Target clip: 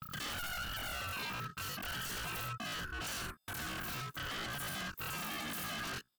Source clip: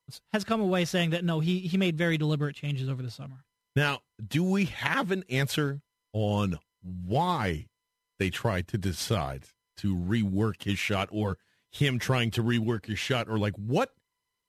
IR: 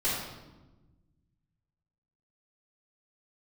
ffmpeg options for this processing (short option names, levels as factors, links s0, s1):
-filter_complex "[0:a]adynamicequalizer=threshold=0.0112:dfrequency=200:dqfactor=1.8:tfrequency=200:tqfactor=1.8:attack=5:release=100:ratio=0.375:range=2:mode=boostabove:tftype=bell,acompressor=threshold=0.0316:ratio=8,asetrate=103194,aresample=44100,asplit=2[s0][s1];[s1]aecho=0:1:65|100|102:0.631|0.119|0.335[s2];[s0][s2]amix=inputs=2:normalize=0,asoftclip=type=tanh:threshold=0.0282,equalizer=f=100:t=o:w=0.33:g=6,equalizer=f=315:t=o:w=0.33:g=8,equalizer=f=500:t=o:w=0.33:g=8,equalizer=f=2000:t=o:w=0.33:g=10,equalizer=f=8000:t=o:w=0.33:g=9,aeval=exprs='val(0)*sin(2*PI*390*n/s)':c=same,asetrate=80880,aresample=44100,atempo=0.545254,aeval=exprs='0.0178*(abs(mod(val(0)/0.0178+3,4)-2)-1)':c=same"